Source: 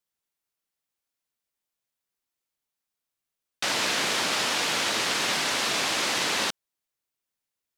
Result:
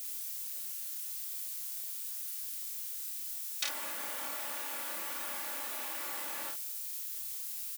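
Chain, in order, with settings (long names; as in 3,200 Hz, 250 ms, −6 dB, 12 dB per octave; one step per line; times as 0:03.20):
treble cut that deepens with the level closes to 1,000 Hz, closed at −25 dBFS
comb filter 3.5 ms
in parallel at −9 dB: bit-depth reduction 6 bits, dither triangular
on the sum: first-order pre-emphasis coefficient 0.97
on a send: ambience of single reflections 30 ms −4 dB, 52 ms −7 dB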